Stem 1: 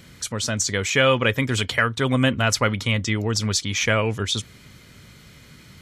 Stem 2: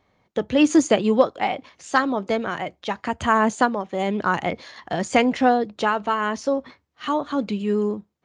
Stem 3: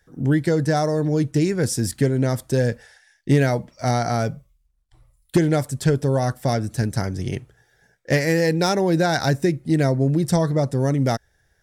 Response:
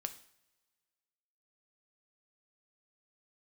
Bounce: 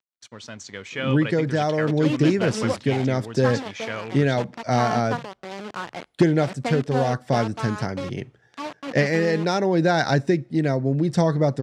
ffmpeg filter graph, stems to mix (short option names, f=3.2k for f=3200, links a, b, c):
-filter_complex "[0:a]aeval=exprs='sgn(val(0))*max(abs(val(0))-0.0133,0)':c=same,volume=-11dB,asplit=2[a][b];[b]volume=-18dB[c];[1:a]highshelf=f=3.1k:g=-6,acrusher=bits=3:mix=0:aa=0.000001,aeval=exprs='sgn(val(0))*max(abs(val(0))-0.0316,0)':c=same,adelay=1500,volume=-9dB,asplit=2[d][e];[e]volume=-21.5dB[f];[2:a]tremolo=f=0.76:d=0.31,adelay=850,volume=0dB,asplit=2[g][h];[h]volume=-16.5dB[i];[3:a]atrim=start_sample=2205[j];[c][f][i]amix=inputs=3:normalize=0[k];[k][j]afir=irnorm=-1:irlink=0[l];[a][d][g][l]amix=inputs=4:normalize=0,highpass=130,lowpass=4.7k"